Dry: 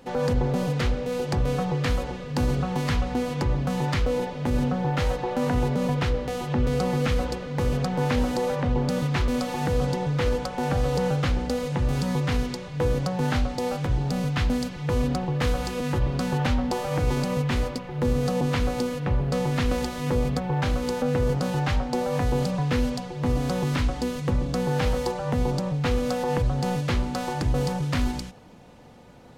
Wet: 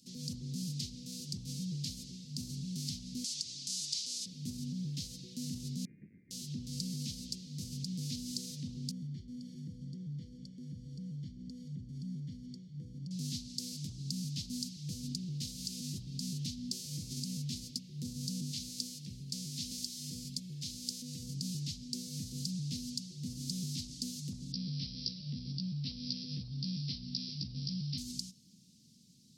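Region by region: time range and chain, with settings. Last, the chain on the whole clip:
0:03.24–0:04.26: meter weighting curve ITU-R 468 + downward compressor 3 to 1, threshold −29 dBFS
0:05.85–0:06.31: each half-wave held at its own peak + high-pass filter 1,500 Hz + voice inversion scrambler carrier 2,600 Hz
0:08.91–0:13.11: Savitzky-Golay smoothing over 41 samples + downward compressor 5 to 1, threshold −25 dBFS
0:18.51–0:21.23: low-shelf EQ 470 Hz −6.5 dB + repeating echo 248 ms, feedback 41%, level −19 dB
0:24.52–0:27.98: bad sample-rate conversion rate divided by 4×, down none, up filtered + double-tracking delay 15 ms −3 dB
whole clip: elliptic band-stop filter 200–4,800 Hz, stop band 70 dB; brickwall limiter −22 dBFS; meter weighting curve A; level +2.5 dB

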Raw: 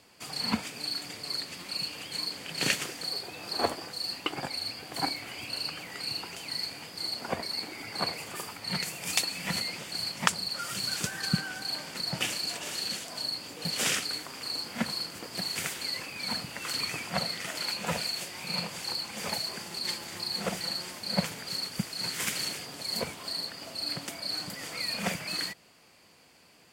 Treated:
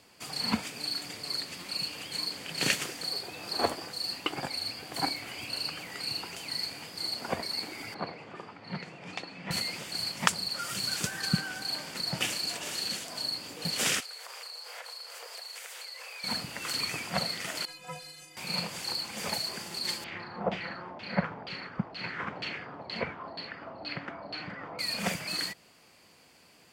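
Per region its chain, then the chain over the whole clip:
0:07.94–0:09.51: high-pass filter 120 Hz + head-to-tape spacing loss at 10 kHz 35 dB
0:14.00–0:16.24: elliptic high-pass filter 470 Hz, stop band 50 dB + downward compressor 12 to 1, threshold −39 dBFS
0:17.65–0:18.37: variable-slope delta modulation 64 kbit/s + stiff-string resonator 150 Hz, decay 0.38 s, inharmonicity 0.03
0:20.04–0:24.79: auto-filter low-pass saw down 2.1 Hz 730–3,200 Hz + high-frequency loss of the air 77 metres
whole clip: no processing

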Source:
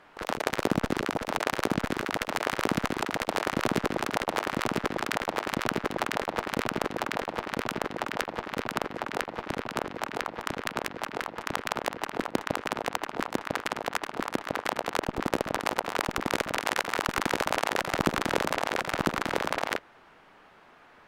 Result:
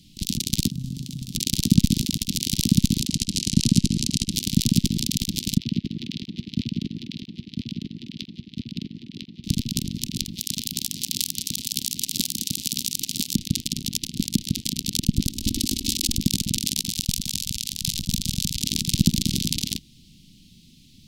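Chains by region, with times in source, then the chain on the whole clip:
0:00.70–0:01.35: parametric band 150 Hz +9.5 dB 0.86 octaves + tuned comb filter 130 Hz, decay 0.26 s + output level in coarse steps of 22 dB
0:03.07–0:04.31: Chebyshev low-pass filter 8,800 Hz + notch filter 3,500 Hz, Q 15
0:05.58–0:09.44: high-pass filter 260 Hz 6 dB per octave + high-frequency loss of the air 300 metres + multiband upward and downward expander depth 100%
0:10.37–0:13.34: spectral tilt +3 dB per octave + delay that swaps between a low-pass and a high-pass 220 ms, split 1,200 Hz, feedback 64%, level −9.5 dB
0:15.26–0:16.16: parametric band 1,100 Hz −10 dB 0.59 octaves + comb filter 3.1 ms, depth 96% + compressor whose output falls as the input rises −31 dBFS, ratio −0.5
0:16.90–0:18.60: parametric band 370 Hz −13 dB 2.3 octaves + compressor whose output falls as the input rises −36 dBFS, ratio −0.5
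whole clip: inverse Chebyshev band-stop filter 530–1,600 Hz, stop band 60 dB; boost into a limiter +18 dB; level −1 dB

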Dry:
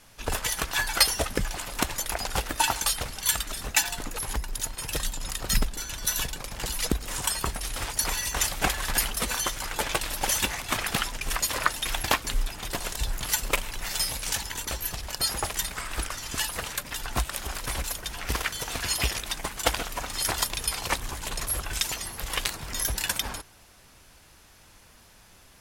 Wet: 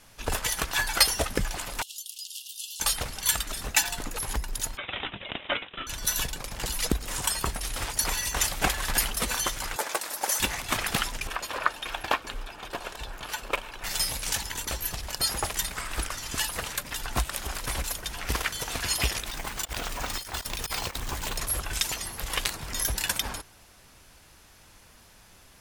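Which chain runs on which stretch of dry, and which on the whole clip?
0:01.82–0:02.80: Chebyshev high-pass filter 2,800 Hz, order 8 + downward compressor 4 to 1, threshold −35 dBFS
0:04.77–0:05.87: Butterworth high-pass 2,100 Hz 48 dB per octave + bad sample-rate conversion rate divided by 6×, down none, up filtered
0:09.76–0:10.40: high-pass filter 400 Hz + parametric band 3,000 Hz −8 dB 0.97 octaves
0:11.27–0:13.84: bass and treble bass −11 dB, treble −14 dB + notch filter 2,000 Hz, Q 8.4
0:19.27–0:21.38: compressor whose output falls as the input rises −32 dBFS, ratio −0.5 + bad sample-rate conversion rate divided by 2×, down filtered, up hold
whole clip: no processing

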